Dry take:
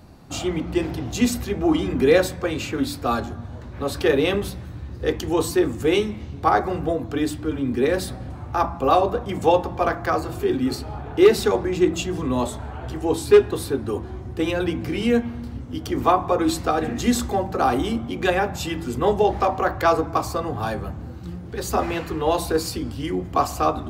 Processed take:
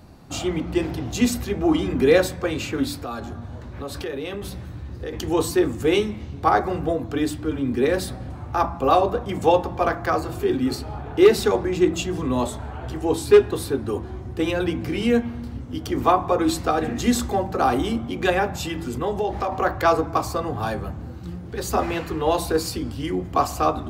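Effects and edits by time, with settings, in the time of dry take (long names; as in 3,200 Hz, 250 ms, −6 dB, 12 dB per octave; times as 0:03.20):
0:02.99–0:05.13: downward compressor 4 to 1, threshold −28 dBFS
0:18.60–0:19.52: downward compressor 2 to 1, threshold −24 dBFS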